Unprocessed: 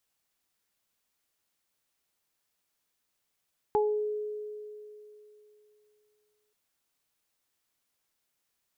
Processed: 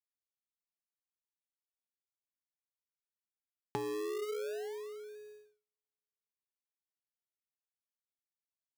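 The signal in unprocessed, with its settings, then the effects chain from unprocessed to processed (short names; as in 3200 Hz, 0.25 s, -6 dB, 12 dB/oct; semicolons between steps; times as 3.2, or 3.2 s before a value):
additive tone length 2.78 s, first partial 422 Hz, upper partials -0.5 dB, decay 3.04 s, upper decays 0.35 s, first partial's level -22.5 dB
gate -58 dBFS, range -43 dB; compressor 6:1, threshold -37 dBFS; in parallel at -3.5 dB: decimation with a swept rate 41×, swing 100% 0.33 Hz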